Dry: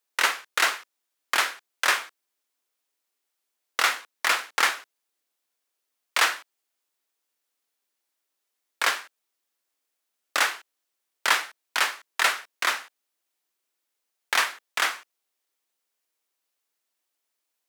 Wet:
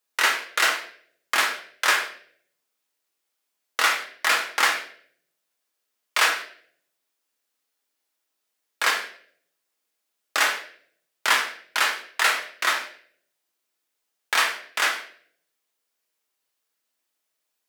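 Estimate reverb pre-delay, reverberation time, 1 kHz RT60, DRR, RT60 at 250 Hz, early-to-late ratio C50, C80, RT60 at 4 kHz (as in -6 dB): 5 ms, 0.55 s, 0.50 s, 1.5 dB, 0.75 s, 8.5 dB, 12.5 dB, 0.50 s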